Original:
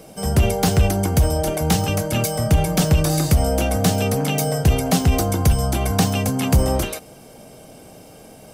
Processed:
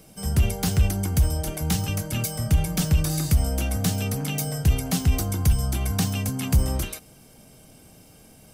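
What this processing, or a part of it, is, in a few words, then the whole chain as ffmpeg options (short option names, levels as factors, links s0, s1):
smiley-face EQ: -af "lowshelf=f=99:g=5,equalizer=f=580:t=o:w=1.6:g=-8,highshelf=f=9300:g=4,volume=0.501"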